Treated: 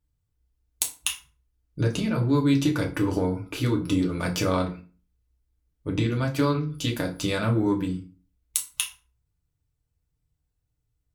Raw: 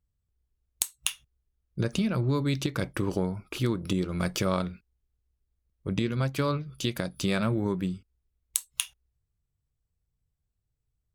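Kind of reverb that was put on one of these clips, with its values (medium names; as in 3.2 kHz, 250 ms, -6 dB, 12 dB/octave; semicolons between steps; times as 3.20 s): FDN reverb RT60 0.36 s, low-frequency decay 1.25×, high-frequency decay 0.75×, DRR -0.5 dB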